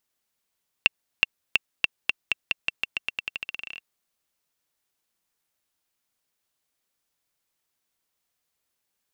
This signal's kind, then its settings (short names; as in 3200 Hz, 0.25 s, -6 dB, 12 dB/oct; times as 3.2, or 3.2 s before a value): bouncing ball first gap 0.37 s, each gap 0.88, 2710 Hz, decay 20 ms -2 dBFS